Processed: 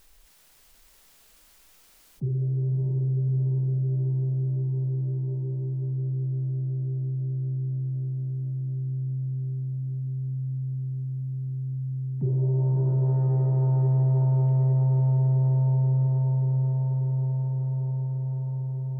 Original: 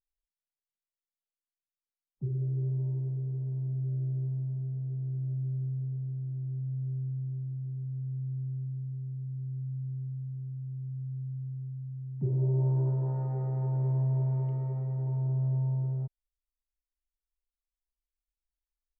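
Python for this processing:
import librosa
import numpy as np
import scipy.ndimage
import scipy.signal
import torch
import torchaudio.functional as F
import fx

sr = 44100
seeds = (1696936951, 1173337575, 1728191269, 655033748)

y = fx.echo_diffused(x, sr, ms=610, feedback_pct=65, wet_db=-3)
y = fx.env_flatten(y, sr, amount_pct=50)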